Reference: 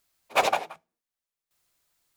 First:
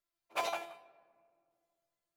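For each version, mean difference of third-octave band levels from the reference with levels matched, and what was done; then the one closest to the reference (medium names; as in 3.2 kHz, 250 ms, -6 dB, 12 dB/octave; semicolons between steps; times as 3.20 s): 3.5 dB: bass shelf 460 Hz -3.5 dB; feedback comb 340 Hz, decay 0.41 s, harmonics all, mix 90%; simulated room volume 3700 m³, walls mixed, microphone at 0.39 m; tape noise reduction on one side only decoder only; trim +3.5 dB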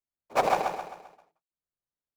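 6.5 dB: median filter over 15 samples; bass shelf 470 Hz +6.5 dB; on a send: feedback delay 131 ms, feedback 44%, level -4.5 dB; on the sum: gate with hold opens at -60 dBFS; trim -2.5 dB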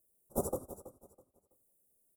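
15.0 dB: every band turned upside down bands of 2 kHz; elliptic band-stop 540–9200 Hz, stop band 80 dB; on a send: feedback delay 327 ms, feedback 26%, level -15 dB; on the sum: trim +2 dB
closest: first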